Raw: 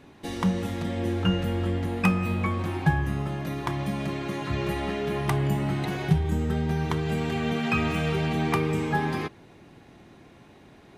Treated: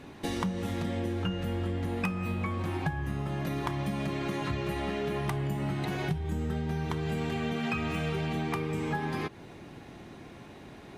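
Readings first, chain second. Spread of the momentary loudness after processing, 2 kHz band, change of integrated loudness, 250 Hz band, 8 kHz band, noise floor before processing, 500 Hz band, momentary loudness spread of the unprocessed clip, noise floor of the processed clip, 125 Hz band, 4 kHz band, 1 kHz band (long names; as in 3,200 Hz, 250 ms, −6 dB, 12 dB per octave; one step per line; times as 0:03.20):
16 LU, −5.5 dB, −5.5 dB, −5.5 dB, −4.0 dB, −52 dBFS, −4.5 dB, 6 LU, −48 dBFS, −5.5 dB, −4.5 dB, −5.0 dB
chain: downward compressor 6 to 1, threshold −33 dBFS, peak gain reduction 16.5 dB
level +4 dB
Opus 64 kbit/s 48,000 Hz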